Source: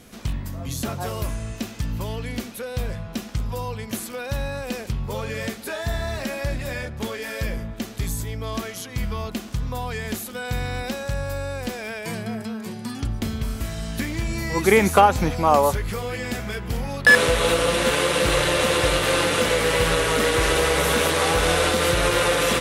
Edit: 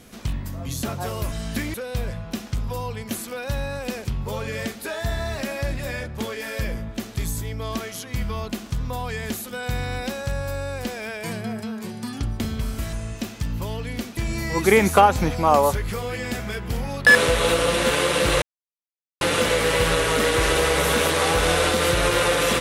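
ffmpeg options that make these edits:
-filter_complex "[0:a]asplit=7[a][b][c][d][e][f][g];[a]atrim=end=1.322[h];[b]atrim=start=13.748:end=14.172[i];[c]atrim=start=2.558:end=13.752[j];[d]atrim=start=1.318:end=2.562[k];[e]atrim=start=14.168:end=18.42,asetpts=PTS-STARTPTS,afade=t=out:st=4.248:d=0.004:c=hsin[l];[f]atrim=start=18.42:end=19.21,asetpts=PTS-STARTPTS,volume=0[m];[g]atrim=start=19.21,asetpts=PTS-STARTPTS,afade=t=in:d=0.004:c=hsin[n];[h][i]acrossfade=d=0.004:c1=hsin:c2=hsin[o];[o][j]acrossfade=d=0.004:c1=hsin:c2=hsin[p];[p][k]acrossfade=d=0.004:c1=hsin:c2=hsin[q];[l][m][n]concat=n=3:v=0:a=1[r];[q][r]acrossfade=d=0.004:c1=hsin:c2=hsin"

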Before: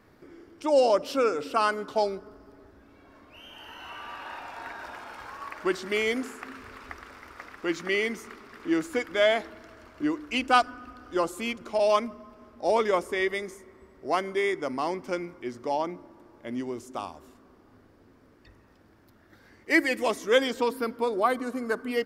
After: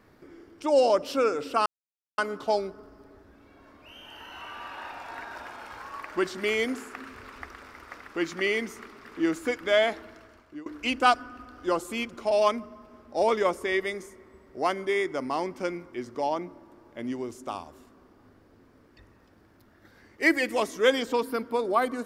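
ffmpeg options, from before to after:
-filter_complex "[0:a]asplit=3[a][b][c];[a]atrim=end=1.66,asetpts=PTS-STARTPTS,afade=t=out:st=1.656:d=0.004:c=hsin,apad=pad_dur=0.52[d];[b]atrim=start=1.66:end=10.14,asetpts=PTS-STARTPTS,afade=t=in:d=0.004:c=hsin,afade=t=out:st=7.91:d=0.57:silence=0.0891251[e];[c]atrim=start=10.14,asetpts=PTS-STARTPTS,afade=t=in:d=0.004:c=hsin:silence=0.0891251[f];[d][e][f]concat=n=3:v=0:a=1"

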